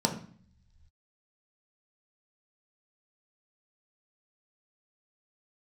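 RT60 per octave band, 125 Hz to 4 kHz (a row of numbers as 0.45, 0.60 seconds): 1.9, 0.90, 0.50, 0.50, 0.60, 1.6 seconds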